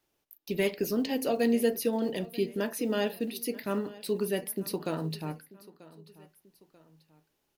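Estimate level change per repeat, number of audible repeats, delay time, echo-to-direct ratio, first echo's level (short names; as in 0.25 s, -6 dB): -7.0 dB, 2, 0.938 s, -19.0 dB, -20.0 dB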